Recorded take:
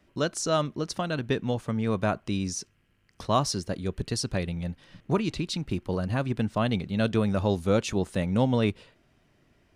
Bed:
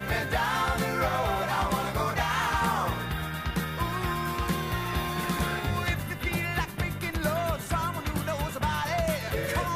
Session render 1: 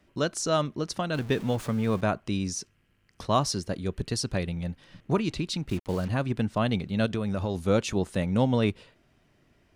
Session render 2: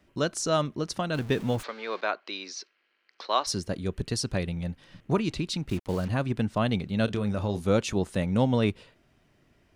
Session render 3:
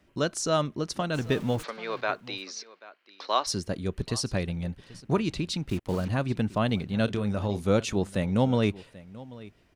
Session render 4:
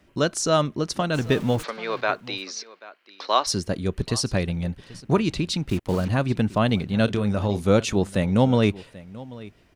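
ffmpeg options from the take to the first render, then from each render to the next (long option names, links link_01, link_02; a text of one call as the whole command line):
ffmpeg -i in.wav -filter_complex "[0:a]asettb=1/sr,asplit=3[link_01][link_02][link_03];[link_01]atrim=end=1.144[link_04];[link_02]atrim=start=1.14:end=2.01,asetpts=PTS-STARTPTS,afade=type=in:duration=0.004:curve=qsin,afade=type=out:start_time=0.866:duration=0.004:curve=qsin,aeval=exprs='val(0)+0.5*0.0126*sgn(val(0))':channel_layout=same[link_05];[link_03]atrim=start=2.006[link_06];[link_04][link_05]acrossfade=duration=0.004:curve1=hsin:curve2=qsin[link_07];[link_07][link_06]acrossfade=duration=0.004:curve1=qsin:curve2=hsin,asplit=3[link_08][link_09][link_10];[link_08]afade=type=out:start_time=5.68:duration=0.02[link_11];[link_09]acrusher=bits=6:mix=0:aa=0.5,afade=type=in:start_time=5.68:duration=0.02,afade=type=out:start_time=6.08:duration=0.02[link_12];[link_10]afade=type=in:start_time=6.08:duration=0.02[link_13];[link_11][link_12][link_13]amix=inputs=3:normalize=0,asplit=3[link_14][link_15][link_16];[link_14]afade=type=out:start_time=7.05:duration=0.02[link_17];[link_15]acompressor=threshold=-25dB:ratio=4:attack=3.2:release=140:knee=1:detection=peak,afade=type=in:start_time=7.05:duration=0.02,afade=type=out:start_time=7.54:duration=0.02[link_18];[link_16]afade=type=in:start_time=7.54:duration=0.02[link_19];[link_17][link_18][link_19]amix=inputs=3:normalize=0" out.wav
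ffmpeg -i in.wav -filter_complex "[0:a]asplit=3[link_01][link_02][link_03];[link_01]afade=type=out:start_time=1.62:duration=0.02[link_04];[link_02]highpass=frequency=400:width=0.5412,highpass=frequency=400:width=1.3066,equalizer=frequency=450:width_type=q:width=4:gain=-3,equalizer=frequency=660:width_type=q:width=4:gain=-3,equalizer=frequency=1500:width_type=q:width=4:gain=3,equalizer=frequency=2200:width_type=q:width=4:gain=4,equalizer=frequency=4200:width_type=q:width=4:gain=8,lowpass=frequency=5100:width=0.5412,lowpass=frequency=5100:width=1.3066,afade=type=in:start_time=1.62:duration=0.02,afade=type=out:start_time=3.46:duration=0.02[link_05];[link_03]afade=type=in:start_time=3.46:duration=0.02[link_06];[link_04][link_05][link_06]amix=inputs=3:normalize=0,asettb=1/sr,asplit=3[link_07][link_08][link_09];[link_07]atrim=end=7.054[link_10];[link_08]atrim=start=7.05:end=7.64,asetpts=PTS-STARTPTS,afade=type=in:duration=0.004:curve=qsin,afade=type=out:start_time=0.586:duration=0.004:curve=qsin,asplit=2[link_11][link_12];[link_12]adelay=29,volume=-10dB[link_13];[link_11][link_13]amix=inputs=2:normalize=0,atrim=end_sample=26019[link_14];[link_09]atrim=start=7.636[link_15];[link_10][link_14]acrossfade=duration=0.004:curve1=hsin:curve2=qsin[link_16];[link_16][link_15]acrossfade=duration=0.004:curve1=qsin:curve2=hsin" out.wav
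ffmpeg -i in.wav -af "aecho=1:1:786:0.106" out.wav
ffmpeg -i in.wav -af "volume=5dB" out.wav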